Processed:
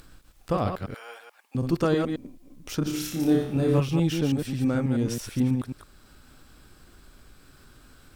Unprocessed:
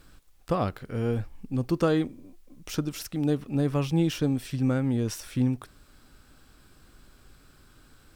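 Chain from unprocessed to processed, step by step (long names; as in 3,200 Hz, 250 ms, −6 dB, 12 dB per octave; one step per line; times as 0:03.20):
delay that plays each chunk backwards 108 ms, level −4.5 dB
upward compression, threshold −46 dBFS
0:00.94–0:01.55: high-pass filter 800 Hz 24 dB per octave
0:02.83–0:03.80: flutter between parallel walls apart 5.1 metres, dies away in 0.55 s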